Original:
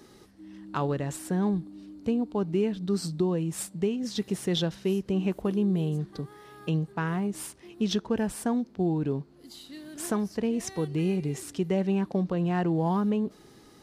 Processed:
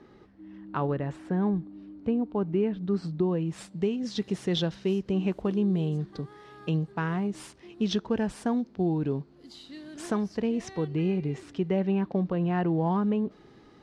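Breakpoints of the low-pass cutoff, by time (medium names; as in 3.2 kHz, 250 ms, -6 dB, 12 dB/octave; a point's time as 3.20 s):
3.12 s 2.3 kHz
3.87 s 5.6 kHz
10.37 s 5.6 kHz
10.97 s 3.2 kHz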